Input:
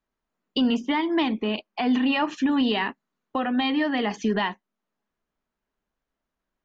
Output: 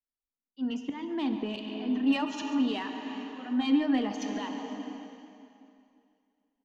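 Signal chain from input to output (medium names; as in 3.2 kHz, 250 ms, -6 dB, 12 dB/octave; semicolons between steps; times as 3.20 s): reverb removal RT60 0.61 s; slow attack 571 ms; dynamic bell 1.9 kHz, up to -6 dB, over -47 dBFS, Q 2; plate-style reverb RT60 4.3 s, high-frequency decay 0.95×, DRR 6.5 dB; in parallel at -5.5 dB: saturation -30 dBFS, distortion -9 dB; on the sum: compression 5:1, threshold -32 dBFS, peak gain reduction 10 dB; peaking EQ 270 Hz +10 dB 0.27 oct; on a send: delay 142 ms -12.5 dB; on the sum: three bands expanded up and down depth 70%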